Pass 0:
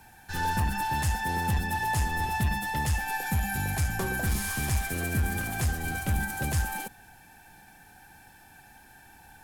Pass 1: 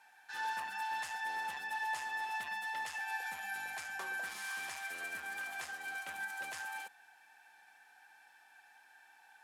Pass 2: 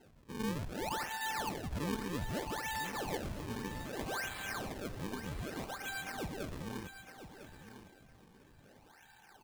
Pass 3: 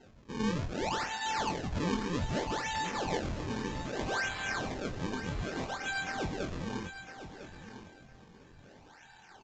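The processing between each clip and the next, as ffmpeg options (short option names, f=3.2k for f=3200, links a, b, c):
-af "highpass=1k,aemphasis=mode=reproduction:type=50fm,volume=-4.5dB"
-af "acrusher=samples=37:mix=1:aa=0.000001:lfo=1:lforange=59.2:lforate=0.63,aecho=1:1:1003|2006:0.266|0.0452,volume=1dB"
-filter_complex "[0:a]asplit=2[a][b];[b]adelay=23,volume=-6dB[c];[a][c]amix=inputs=2:normalize=0,aresample=16000,aresample=44100,volume=4dB"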